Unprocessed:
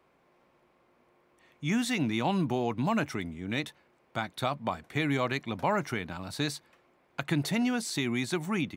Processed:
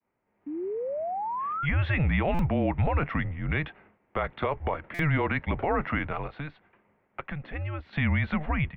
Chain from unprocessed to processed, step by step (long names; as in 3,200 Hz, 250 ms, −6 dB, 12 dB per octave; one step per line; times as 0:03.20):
0:00.46–0:01.66: sound drawn into the spectrogram rise 430–1,600 Hz −40 dBFS
0:06.26–0:07.93: downward compressor 2.5 to 1, threshold −46 dBFS, peak gain reduction 14.5 dB
downward expander −58 dBFS
single-sideband voice off tune −150 Hz 200–2,800 Hz
brickwall limiter −26.5 dBFS, peak gain reduction 10.5 dB
automatic gain control gain up to 9 dB
buffer that repeats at 0:02.34/0:04.94, samples 256, times 8